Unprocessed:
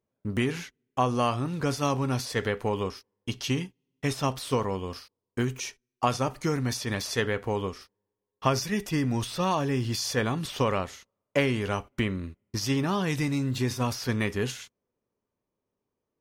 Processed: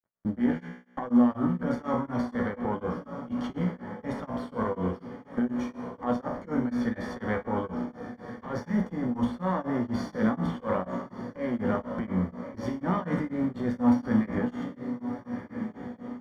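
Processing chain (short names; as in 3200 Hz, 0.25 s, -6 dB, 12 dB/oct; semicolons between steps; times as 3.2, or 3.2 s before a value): half-wave gain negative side -12 dB; HPF 43 Hz 12 dB/oct; in parallel at -0.5 dB: limiter -21 dBFS, peak gain reduction 8.5 dB; on the sum: diffused feedback echo 1.364 s, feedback 44%, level -12 dB; negative-ratio compressor -26 dBFS, ratio -0.5; on a send at -5.5 dB: reverb RT60 0.45 s, pre-delay 3 ms; on the sum: companded quantiser 6-bit; polynomial smoothing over 41 samples; resonator 61 Hz, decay 0.84 s, harmonics all, mix 80%; beating tremolo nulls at 4.1 Hz; gain +8.5 dB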